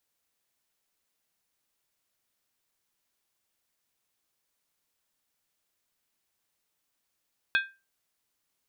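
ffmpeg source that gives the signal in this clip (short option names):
-f lavfi -i "aevalsrc='0.112*pow(10,-3*t/0.28)*sin(2*PI*1580*t)+0.0631*pow(10,-3*t/0.222)*sin(2*PI*2518.5*t)+0.0355*pow(10,-3*t/0.192)*sin(2*PI*3374.9*t)+0.02*pow(10,-3*t/0.185)*sin(2*PI*3627.7*t)+0.0112*pow(10,-3*t/0.172)*sin(2*PI*4191.7*t)':d=0.63:s=44100"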